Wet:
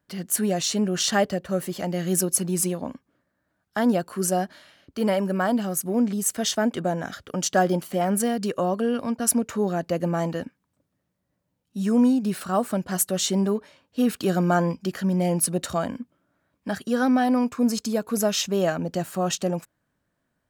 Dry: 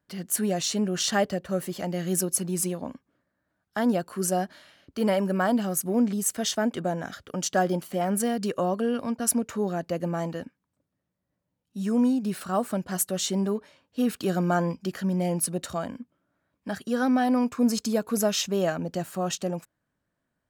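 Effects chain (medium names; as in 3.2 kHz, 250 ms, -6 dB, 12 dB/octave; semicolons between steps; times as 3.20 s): gain riding 2 s; trim +2 dB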